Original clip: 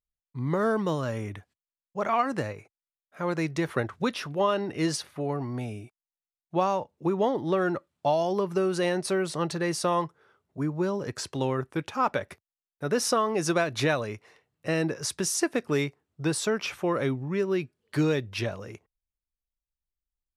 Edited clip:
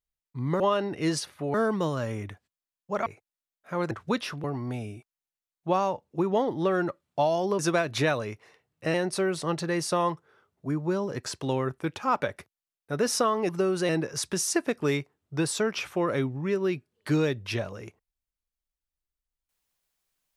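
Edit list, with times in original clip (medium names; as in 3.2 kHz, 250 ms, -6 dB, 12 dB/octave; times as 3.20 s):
2.12–2.54 s: delete
3.39–3.84 s: delete
4.37–5.31 s: move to 0.60 s
8.46–8.86 s: swap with 13.41–14.76 s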